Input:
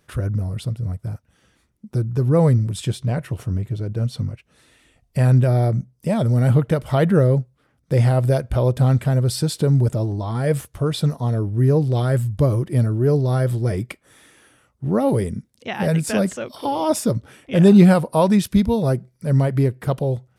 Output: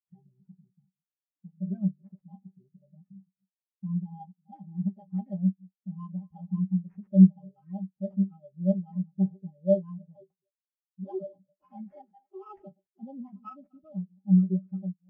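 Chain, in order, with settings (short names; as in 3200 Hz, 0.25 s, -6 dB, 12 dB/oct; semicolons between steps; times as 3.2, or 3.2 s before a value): reverse delay 0.202 s, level -13 dB; in parallel at +3 dB: limiter -14 dBFS, peak gain reduction 11.5 dB; on the sum: metallic resonator 140 Hz, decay 0.25 s, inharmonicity 0.008; speed mistake 33 rpm record played at 45 rpm; dynamic EQ 130 Hz, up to -7 dB, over -32 dBFS, Q 1.4; sample-rate reducer 4000 Hz, jitter 20%; spectral expander 2.5:1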